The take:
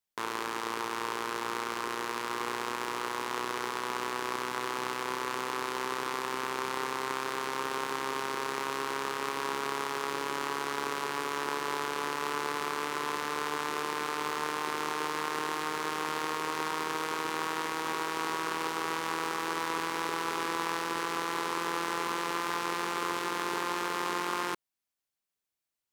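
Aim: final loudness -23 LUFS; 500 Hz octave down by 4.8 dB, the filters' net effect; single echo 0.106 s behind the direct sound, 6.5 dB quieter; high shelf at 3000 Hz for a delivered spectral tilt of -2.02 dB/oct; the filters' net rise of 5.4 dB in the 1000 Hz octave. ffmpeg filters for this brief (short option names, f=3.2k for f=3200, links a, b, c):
-af "equalizer=f=500:t=o:g=-8,equalizer=f=1k:t=o:g=7,highshelf=f=3k:g=7,aecho=1:1:106:0.473,volume=5dB"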